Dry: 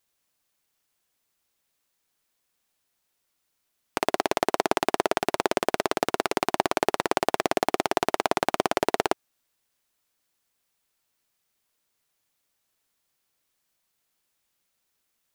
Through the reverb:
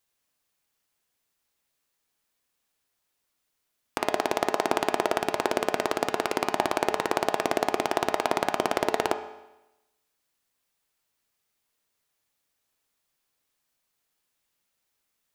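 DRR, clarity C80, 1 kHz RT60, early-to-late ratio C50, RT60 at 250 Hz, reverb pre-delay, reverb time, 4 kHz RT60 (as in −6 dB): 5.5 dB, 11.0 dB, 0.95 s, 9.0 dB, 0.95 s, 5 ms, 0.95 s, 0.95 s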